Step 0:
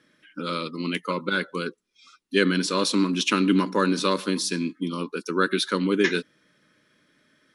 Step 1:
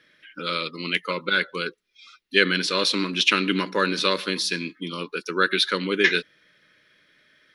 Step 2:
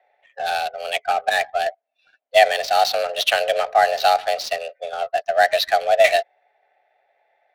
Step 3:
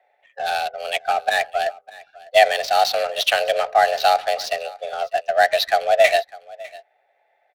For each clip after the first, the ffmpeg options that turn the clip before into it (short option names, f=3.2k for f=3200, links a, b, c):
-af "equalizer=f=125:t=o:w=1:g=-4,equalizer=f=250:t=o:w=1:g=-10,equalizer=f=1k:t=o:w=1:g=-6,equalizer=f=2k:t=o:w=1:g=5,equalizer=f=4k:t=o:w=1:g=4,equalizer=f=8k:t=o:w=1:g=-10,volume=3.5dB"
-af "afreqshift=250,highpass=f=700:t=q:w=5.2,adynamicsmooth=sensitivity=3.5:basefreq=1.3k,volume=-1.5dB"
-af "aecho=1:1:602:0.0841"